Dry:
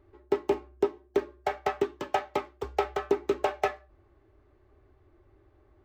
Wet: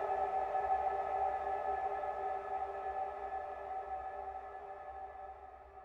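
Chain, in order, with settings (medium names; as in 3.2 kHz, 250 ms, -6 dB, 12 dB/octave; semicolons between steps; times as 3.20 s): median filter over 9 samples; treble shelf 2.1 kHz -10.5 dB; level held to a coarse grid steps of 19 dB; Paulstretch 36×, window 0.50 s, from 3.70 s; peaking EQ 760 Hz +11.5 dB 0.62 oct; trim +1 dB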